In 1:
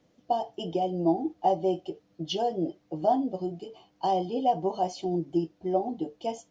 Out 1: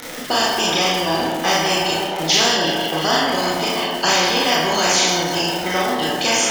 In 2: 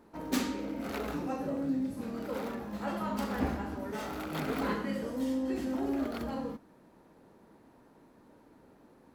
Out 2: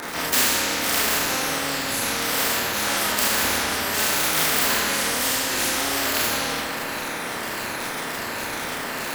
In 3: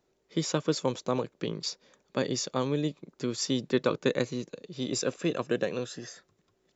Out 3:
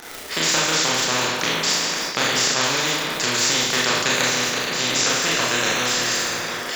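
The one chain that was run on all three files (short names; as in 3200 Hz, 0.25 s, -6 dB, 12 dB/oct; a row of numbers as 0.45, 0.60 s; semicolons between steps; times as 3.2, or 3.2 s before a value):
moving spectral ripple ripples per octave 1.4, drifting -1.4 Hz, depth 7 dB; HPF 580 Hz 6 dB/oct; bell 1700 Hz +12 dB 0.68 oct; reverse; upward compressor, threshold -46 dBFS; reverse; crackle 55/s -46 dBFS; tape echo 0.164 s, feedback 66%, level -15 dB, low-pass 4600 Hz; Schroeder reverb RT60 0.44 s, combs from 25 ms, DRR -6 dB; spectral compressor 4:1; normalise peaks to -3 dBFS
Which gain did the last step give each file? +2.5, +8.5, +5.0 dB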